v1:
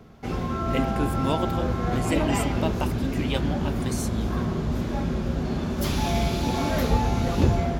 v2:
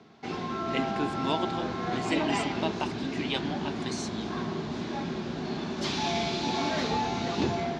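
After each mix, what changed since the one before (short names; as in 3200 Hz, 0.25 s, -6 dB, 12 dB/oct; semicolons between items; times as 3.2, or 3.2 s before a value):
master: add speaker cabinet 240–6300 Hz, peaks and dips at 250 Hz -3 dB, 530 Hz -10 dB, 1300 Hz -4 dB, 4000 Hz +4 dB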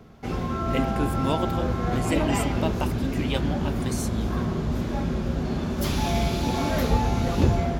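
master: remove speaker cabinet 240–6300 Hz, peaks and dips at 250 Hz -3 dB, 530 Hz -10 dB, 1300 Hz -4 dB, 4000 Hz +4 dB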